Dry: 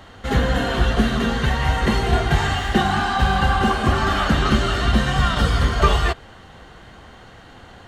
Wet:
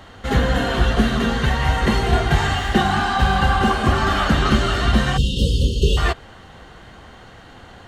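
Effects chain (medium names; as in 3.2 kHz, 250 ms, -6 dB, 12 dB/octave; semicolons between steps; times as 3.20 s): spectral selection erased 5.17–5.97 s, 570–2600 Hz; trim +1 dB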